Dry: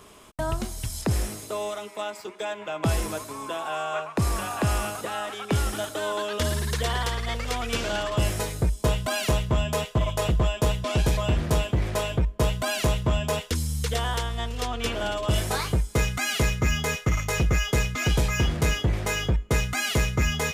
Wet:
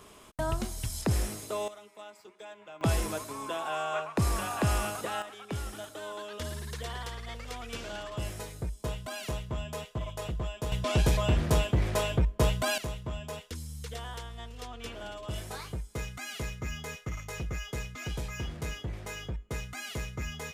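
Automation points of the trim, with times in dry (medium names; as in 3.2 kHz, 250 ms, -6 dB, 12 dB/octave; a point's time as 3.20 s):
-3 dB
from 1.68 s -15 dB
from 2.81 s -3 dB
from 5.22 s -11.5 dB
from 10.72 s -2 dB
from 12.78 s -13 dB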